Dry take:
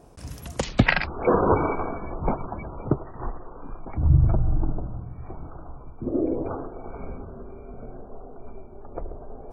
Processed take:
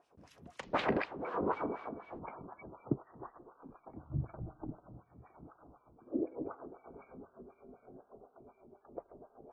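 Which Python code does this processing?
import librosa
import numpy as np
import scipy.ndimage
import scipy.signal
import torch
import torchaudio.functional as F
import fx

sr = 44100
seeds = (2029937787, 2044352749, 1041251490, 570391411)

y = fx.dmg_wind(x, sr, seeds[0], corner_hz=590.0, level_db=-23.0, at=(0.73, 2.18), fade=0.02)
y = fx.cheby_harmonics(y, sr, harmonics=(4,), levels_db=(-26,), full_scale_db=-2.5)
y = fx.filter_lfo_bandpass(y, sr, shape='sine', hz=4.0, low_hz=220.0, high_hz=3300.0, q=1.4)
y = F.gain(torch.from_numpy(y), -7.5).numpy()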